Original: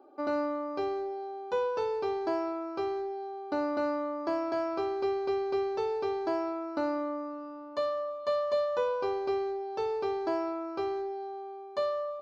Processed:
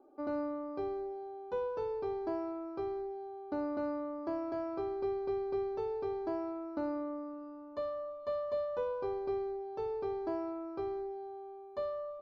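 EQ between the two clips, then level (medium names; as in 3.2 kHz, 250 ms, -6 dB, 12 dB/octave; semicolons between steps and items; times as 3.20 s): tilt EQ -3 dB/octave; band-stop 2.8 kHz, Q 26; -8.5 dB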